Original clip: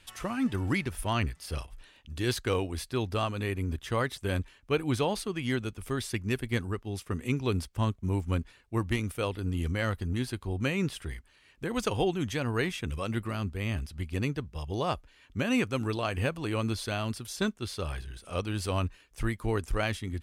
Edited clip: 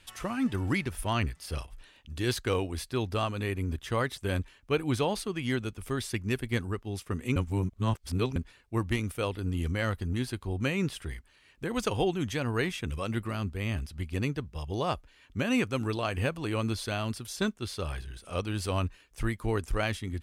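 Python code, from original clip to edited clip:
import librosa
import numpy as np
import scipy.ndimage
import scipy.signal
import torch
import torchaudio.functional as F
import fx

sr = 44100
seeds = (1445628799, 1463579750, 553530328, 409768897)

y = fx.edit(x, sr, fx.reverse_span(start_s=7.36, length_s=1.0), tone=tone)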